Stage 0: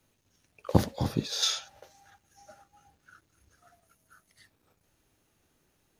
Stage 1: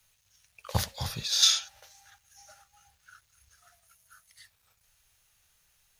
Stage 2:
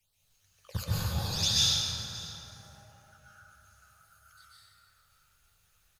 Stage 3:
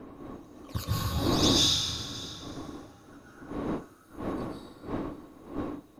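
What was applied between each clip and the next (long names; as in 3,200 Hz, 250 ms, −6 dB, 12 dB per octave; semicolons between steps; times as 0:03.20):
guitar amp tone stack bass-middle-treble 10-0-10; level +8 dB
all-pass phaser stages 12, 2.1 Hz, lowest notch 590–2,300 Hz; single-tap delay 589 ms −18 dB; dense smooth reverb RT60 3.5 s, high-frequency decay 0.4×, pre-delay 115 ms, DRR −9.5 dB; level −6.5 dB
wind on the microphone 520 Hz −40 dBFS; hollow resonant body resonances 290/1,100/3,800 Hz, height 12 dB, ringing for 45 ms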